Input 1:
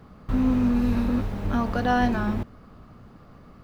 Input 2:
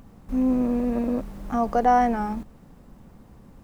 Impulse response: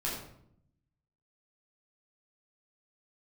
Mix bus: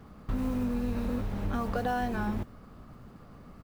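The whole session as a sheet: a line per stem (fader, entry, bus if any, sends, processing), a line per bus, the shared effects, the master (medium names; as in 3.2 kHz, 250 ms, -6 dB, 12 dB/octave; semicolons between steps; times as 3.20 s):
-2.5 dB, 0.00 s, no send, none
-10.5 dB, 6.9 ms, polarity flipped, no send, modulation noise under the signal 21 dB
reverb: none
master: compression, threshold -27 dBFS, peak gain reduction 8.5 dB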